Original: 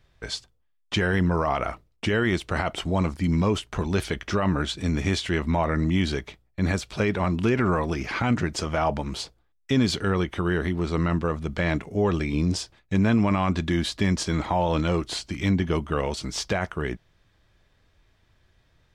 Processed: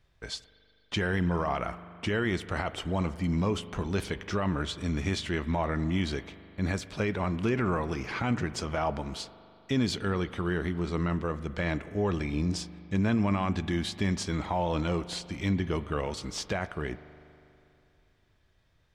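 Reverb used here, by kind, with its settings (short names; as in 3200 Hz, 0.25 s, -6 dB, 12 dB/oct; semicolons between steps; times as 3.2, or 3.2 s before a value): spring tank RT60 2.8 s, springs 40 ms, chirp 80 ms, DRR 14.5 dB; gain -5.5 dB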